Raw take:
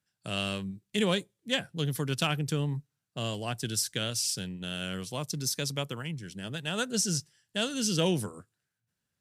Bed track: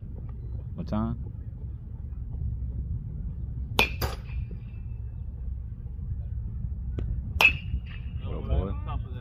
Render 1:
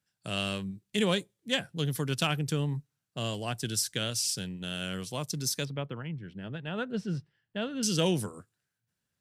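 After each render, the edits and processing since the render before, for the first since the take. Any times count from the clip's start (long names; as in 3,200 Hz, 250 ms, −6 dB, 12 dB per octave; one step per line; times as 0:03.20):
0:05.65–0:07.83: high-frequency loss of the air 460 metres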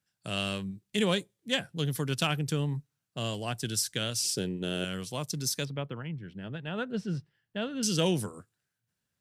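0:04.20–0:04.85: parametric band 380 Hz +13.5 dB 1.2 octaves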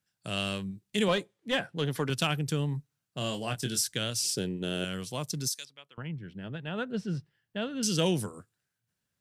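0:01.08–0:02.10: mid-hump overdrive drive 16 dB, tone 1,400 Hz, clips at −14.5 dBFS
0:03.19–0:03.87: double-tracking delay 23 ms −6 dB
0:05.48–0:05.98: resonant band-pass 7,900 Hz, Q 0.65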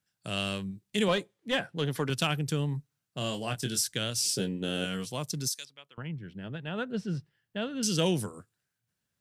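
0:04.16–0:05.06: double-tracking delay 15 ms −5 dB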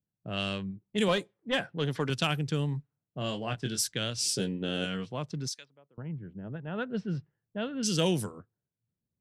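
low-pass that shuts in the quiet parts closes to 400 Hz, open at −24.5 dBFS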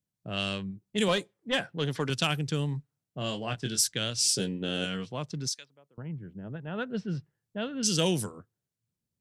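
parametric band 7,400 Hz +5 dB 2 octaves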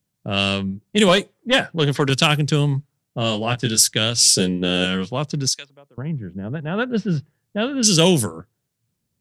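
level +11.5 dB
brickwall limiter −2 dBFS, peak gain reduction 1.5 dB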